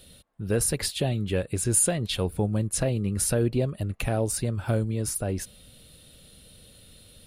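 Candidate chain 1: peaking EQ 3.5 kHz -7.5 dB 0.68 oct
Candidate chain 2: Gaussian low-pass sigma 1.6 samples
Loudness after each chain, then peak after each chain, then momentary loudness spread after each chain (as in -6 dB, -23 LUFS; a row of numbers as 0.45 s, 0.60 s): -26.5 LUFS, -28.5 LUFS; -9.5 dBFS, -13.0 dBFS; 7 LU, 5 LU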